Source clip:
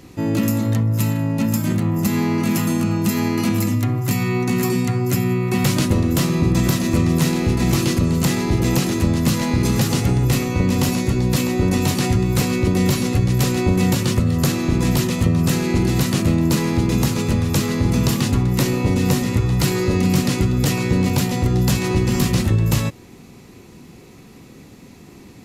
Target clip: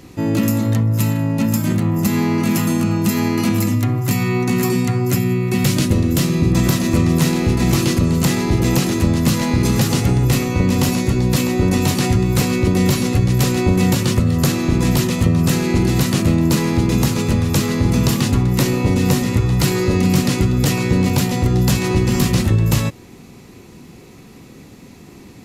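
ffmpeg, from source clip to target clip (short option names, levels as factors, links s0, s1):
-filter_complex "[0:a]asettb=1/sr,asplit=3[s0][s1][s2];[s0]atrim=end=5.184[s3];[s1]atrim=start=5.18:end=6.53,asetpts=PTS-STARTPTS,afade=t=in:d=0.004:c=qsin,afade=t=out:st=1.346:d=0.004:c=qsin,equalizer=f=970:w=0.95:g=-5.5[s4];[s2]atrim=start=6.526[s5];[s3][s4]acrossfade=d=0.004:c1=hsin:c2=qsin[s6];[s6][s5]acrossfade=d=0.004:c1=qsin:c2=hsin,volume=1.26"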